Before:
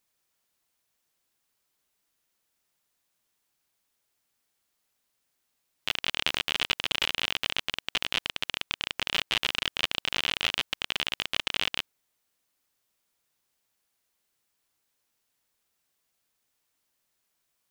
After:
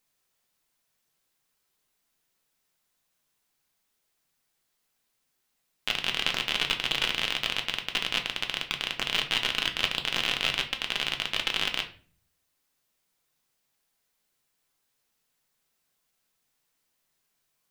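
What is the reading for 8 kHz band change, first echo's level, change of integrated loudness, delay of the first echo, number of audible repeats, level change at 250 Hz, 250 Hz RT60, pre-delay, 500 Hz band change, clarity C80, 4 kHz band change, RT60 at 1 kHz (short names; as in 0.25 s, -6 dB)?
+1.0 dB, none, +1.0 dB, none, none, +2.0 dB, 0.65 s, 4 ms, +1.5 dB, 16.5 dB, +1.0 dB, 0.40 s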